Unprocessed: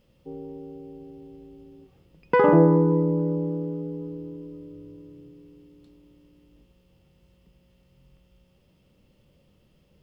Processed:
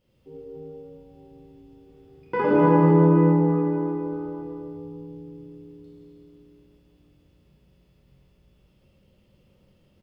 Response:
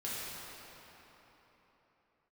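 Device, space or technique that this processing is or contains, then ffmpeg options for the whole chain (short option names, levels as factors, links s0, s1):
cave: -filter_complex "[0:a]aecho=1:1:157:0.376[s0];[1:a]atrim=start_sample=2205[s1];[s0][s1]afir=irnorm=-1:irlink=0,volume=0.668"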